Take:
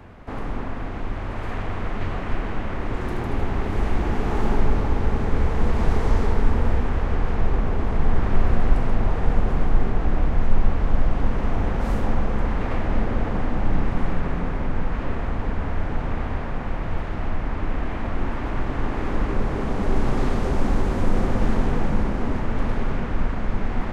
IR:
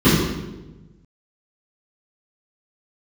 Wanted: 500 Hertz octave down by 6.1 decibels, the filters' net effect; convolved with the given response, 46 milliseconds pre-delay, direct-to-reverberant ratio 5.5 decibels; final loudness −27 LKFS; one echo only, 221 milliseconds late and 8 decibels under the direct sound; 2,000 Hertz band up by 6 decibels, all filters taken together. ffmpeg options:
-filter_complex "[0:a]equalizer=frequency=500:width_type=o:gain=-8.5,equalizer=frequency=2000:width_type=o:gain=8,aecho=1:1:221:0.398,asplit=2[link_01][link_02];[1:a]atrim=start_sample=2205,adelay=46[link_03];[link_02][link_03]afir=irnorm=-1:irlink=0,volume=-30dB[link_04];[link_01][link_04]amix=inputs=2:normalize=0,volume=-7dB"

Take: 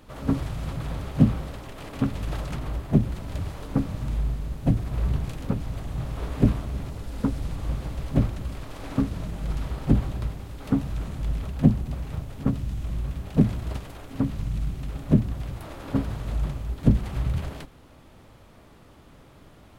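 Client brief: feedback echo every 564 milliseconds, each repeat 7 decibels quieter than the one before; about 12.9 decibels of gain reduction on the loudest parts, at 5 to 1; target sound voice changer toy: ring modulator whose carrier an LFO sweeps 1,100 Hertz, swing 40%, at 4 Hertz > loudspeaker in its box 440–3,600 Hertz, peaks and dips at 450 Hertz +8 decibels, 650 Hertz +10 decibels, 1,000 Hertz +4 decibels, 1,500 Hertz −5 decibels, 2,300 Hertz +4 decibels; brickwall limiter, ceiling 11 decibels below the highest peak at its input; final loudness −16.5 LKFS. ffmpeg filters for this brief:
ffmpeg -i in.wav -af "acompressor=threshold=-27dB:ratio=5,alimiter=level_in=2.5dB:limit=-24dB:level=0:latency=1,volume=-2.5dB,aecho=1:1:564|1128|1692|2256|2820:0.447|0.201|0.0905|0.0407|0.0183,aeval=exprs='val(0)*sin(2*PI*1100*n/s+1100*0.4/4*sin(2*PI*4*n/s))':channel_layout=same,highpass=440,equalizer=frequency=450:width_type=q:width=4:gain=8,equalizer=frequency=650:width_type=q:width=4:gain=10,equalizer=frequency=1000:width_type=q:width=4:gain=4,equalizer=frequency=1500:width_type=q:width=4:gain=-5,equalizer=frequency=2300:width_type=q:width=4:gain=4,lowpass=frequency=3600:width=0.5412,lowpass=frequency=3600:width=1.3066,volume=16.5dB" out.wav

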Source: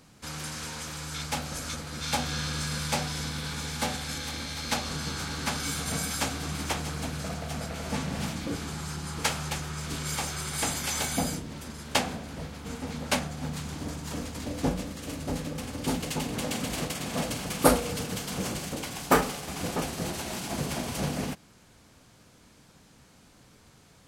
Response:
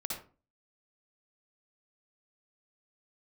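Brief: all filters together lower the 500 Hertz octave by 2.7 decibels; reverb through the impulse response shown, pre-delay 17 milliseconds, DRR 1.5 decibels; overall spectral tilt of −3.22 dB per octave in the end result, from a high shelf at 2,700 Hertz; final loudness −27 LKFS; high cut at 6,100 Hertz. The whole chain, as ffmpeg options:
-filter_complex "[0:a]lowpass=6100,equalizer=frequency=500:width_type=o:gain=-3.5,highshelf=frequency=2700:gain=5.5,asplit=2[link_01][link_02];[1:a]atrim=start_sample=2205,adelay=17[link_03];[link_02][link_03]afir=irnorm=-1:irlink=0,volume=-3dB[link_04];[link_01][link_04]amix=inputs=2:normalize=0,volume=1.5dB"

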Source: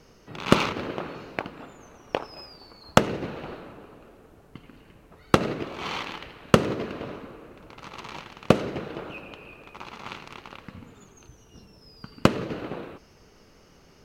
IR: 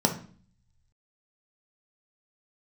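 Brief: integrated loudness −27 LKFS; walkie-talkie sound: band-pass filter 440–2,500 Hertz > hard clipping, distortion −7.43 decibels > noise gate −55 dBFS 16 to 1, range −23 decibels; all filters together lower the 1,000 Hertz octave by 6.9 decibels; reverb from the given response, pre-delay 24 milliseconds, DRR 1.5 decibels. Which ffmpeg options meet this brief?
-filter_complex "[0:a]equalizer=frequency=1000:width_type=o:gain=-9,asplit=2[link_01][link_02];[1:a]atrim=start_sample=2205,adelay=24[link_03];[link_02][link_03]afir=irnorm=-1:irlink=0,volume=-13.5dB[link_04];[link_01][link_04]amix=inputs=2:normalize=0,highpass=440,lowpass=2500,asoftclip=type=hard:threshold=-18.5dB,agate=range=-23dB:threshold=-55dB:ratio=16,volume=6dB"

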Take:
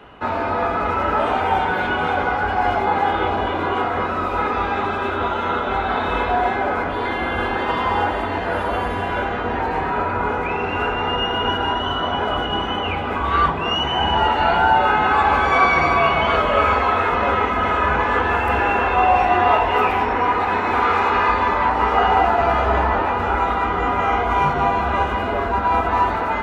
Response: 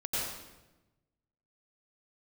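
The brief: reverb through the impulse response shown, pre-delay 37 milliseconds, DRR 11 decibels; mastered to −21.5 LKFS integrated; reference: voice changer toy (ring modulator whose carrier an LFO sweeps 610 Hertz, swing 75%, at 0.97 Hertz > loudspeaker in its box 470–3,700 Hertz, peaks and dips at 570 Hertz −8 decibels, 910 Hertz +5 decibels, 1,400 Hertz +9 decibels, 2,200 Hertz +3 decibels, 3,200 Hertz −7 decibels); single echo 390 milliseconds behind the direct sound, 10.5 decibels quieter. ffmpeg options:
-filter_complex "[0:a]aecho=1:1:390:0.299,asplit=2[link_01][link_02];[1:a]atrim=start_sample=2205,adelay=37[link_03];[link_02][link_03]afir=irnorm=-1:irlink=0,volume=-17dB[link_04];[link_01][link_04]amix=inputs=2:normalize=0,aeval=exprs='val(0)*sin(2*PI*610*n/s+610*0.75/0.97*sin(2*PI*0.97*n/s))':channel_layout=same,highpass=470,equalizer=frequency=570:width_type=q:width=4:gain=-8,equalizer=frequency=910:width_type=q:width=4:gain=5,equalizer=frequency=1400:width_type=q:width=4:gain=9,equalizer=frequency=2200:width_type=q:width=4:gain=3,equalizer=frequency=3200:width_type=q:width=4:gain=-7,lowpass=frequency=3700:width=0.5412,lowpass=frequency=3700:width=1.3066,volume=-3.5dB"

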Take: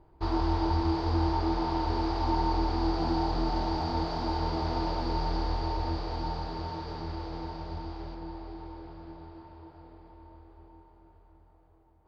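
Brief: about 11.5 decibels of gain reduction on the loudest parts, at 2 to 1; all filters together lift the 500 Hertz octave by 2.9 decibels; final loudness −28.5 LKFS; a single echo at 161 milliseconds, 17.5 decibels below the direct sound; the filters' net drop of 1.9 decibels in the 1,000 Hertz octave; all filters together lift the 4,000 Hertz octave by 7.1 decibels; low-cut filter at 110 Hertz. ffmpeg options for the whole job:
ffmpeg -i in.wav -af "highpass=110,equalizer=frequency=500:width_type=o:gain=5.5,equalizer=frequency=1000:width_type=o:gain=-4.5,equalizer=frequency=4000:width_type=o:gain=8.5,acompressor=threshold=-46dB:ratio=2,aecho=1:1:161:0.133,volume=13dB" out.wav

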